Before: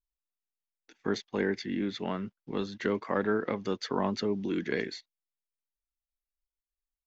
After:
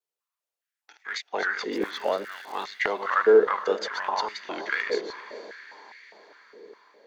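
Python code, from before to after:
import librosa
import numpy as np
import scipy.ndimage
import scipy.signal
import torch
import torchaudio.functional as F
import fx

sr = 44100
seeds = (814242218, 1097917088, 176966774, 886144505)

p1 = fx.reverse_delay(x, sr, ms=186, wet_db=-7)
p2 = np.clip(10.0 ** (23.0 / 20.0) * p1, -1.0, 1.0) / 10.0 ** (23.0 / 20.0)
p3 = p1 + F.gain(torch.from_numpy(p2), -6.5).numpy()
p4 = fx.dmg_crackle(p3, sr, seeds[0], per_s=250.0, level_db=-37.0, at=(1.71, 2.63), fade=0.02)
p5 = fx.vibrato(p4, sr, rate_hz=1.9, depth_cents=52.0)
p6 = fx.echo_diffused(p5, sr, ms=460, feedback_pct=59, wet_db=-14.0)
y = fx.filter_held_highpass(p6, sr, hz=4.9, low_hz=450.0, high_hz=2000.0)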